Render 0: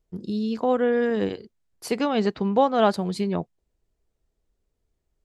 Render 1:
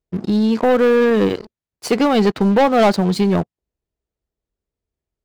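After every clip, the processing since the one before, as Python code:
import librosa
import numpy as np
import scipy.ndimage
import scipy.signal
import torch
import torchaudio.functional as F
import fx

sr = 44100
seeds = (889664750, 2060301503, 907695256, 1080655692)

y = scipy.signal.sosfilt(scipy.signal.butter(2, 46.0, 'highpass', fs=sr, output='sos'), x)
y = fx.high_shelf(y, sr, hz=10000.0, db=-11.0)
y = fx.leveller(y, sr, passes=3)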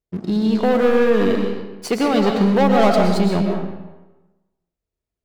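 y = fx.rev_freeverb(x, sr, rt60_s=1.1, hf_ratio=0.75, predelay_ms=80, drr_db=1.5)
y = y * 10.0 ** (-3.5 / 20.0)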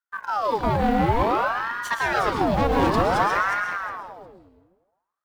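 y = fx.block_float(x, sr, bits=7)
y = fx.echo_feedback(y, sr, ms=360, feedback_pct=19, wet_db=-6.5)
y = fx.ring_lfo(y, sr, carrier_hz=850.0, swing_pct=70, hz=0.55)
y = y * 10.0 ** (-3.5 / 20.0)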